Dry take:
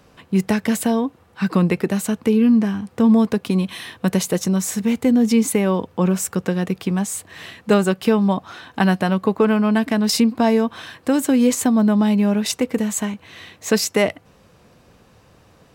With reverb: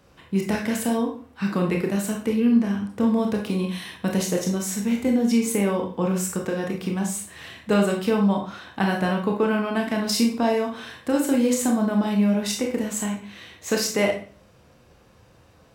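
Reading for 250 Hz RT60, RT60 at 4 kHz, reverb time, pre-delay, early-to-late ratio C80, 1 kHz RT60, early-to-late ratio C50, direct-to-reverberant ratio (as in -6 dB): 0.50 s, 0.40 s, 0.40 s, 23 ms, 11.5 dB, 0.40 s, 6.0 dB, 0.5 dB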